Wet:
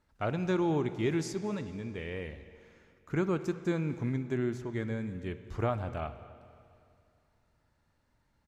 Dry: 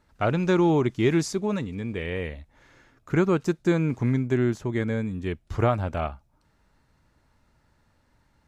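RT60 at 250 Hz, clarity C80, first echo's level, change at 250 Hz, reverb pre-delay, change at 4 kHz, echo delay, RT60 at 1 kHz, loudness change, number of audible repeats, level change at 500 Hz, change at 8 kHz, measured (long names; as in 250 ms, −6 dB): 2.5 s, 13.0 dB, −22.5 dB, −8.0 dB, 16 ms, −8.0 dB, 222 ms, 2.5 s, −8.0 dB, 1, −8.0 dB, −8.5 dB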